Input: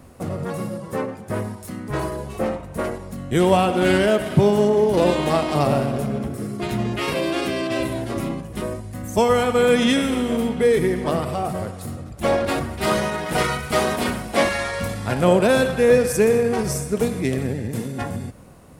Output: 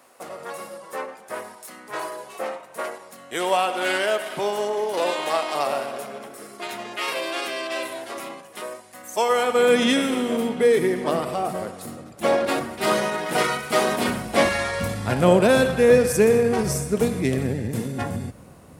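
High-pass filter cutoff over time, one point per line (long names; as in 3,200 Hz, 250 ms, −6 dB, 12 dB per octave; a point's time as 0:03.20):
0:09.18 660 Hz
0:09.77 230 Hz
0:13.83 230 Hz
0:14.34 56 Hz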